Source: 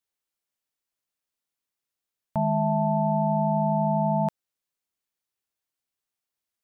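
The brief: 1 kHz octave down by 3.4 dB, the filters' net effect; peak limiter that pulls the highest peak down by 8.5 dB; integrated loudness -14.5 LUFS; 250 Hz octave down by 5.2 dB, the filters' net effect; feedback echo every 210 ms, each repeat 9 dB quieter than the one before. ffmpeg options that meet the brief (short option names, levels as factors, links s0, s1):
-af "equalizer=f=250:t=o:g=-8,equalizer=f=1000:t=o:g=-3.5,alimiter=level_in=1.33:limit=0.0631:level=0:latency=1,volume=0.75,aecho=1:1:210|420|630|840:0.355|0.124|0.0435|0.0152,volume=12.6"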